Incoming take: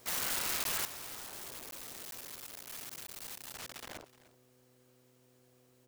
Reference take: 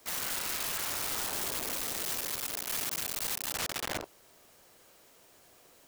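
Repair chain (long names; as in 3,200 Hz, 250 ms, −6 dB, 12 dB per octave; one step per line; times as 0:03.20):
hum removal 125.7 Hz, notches 4
repair the gap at 0:00.64/0:01.71/0:02.11/0:03.07, 12 ms
echo removal 303 ms −18.5 dB
level 0 dB, from 0:00.85 +11.5 dB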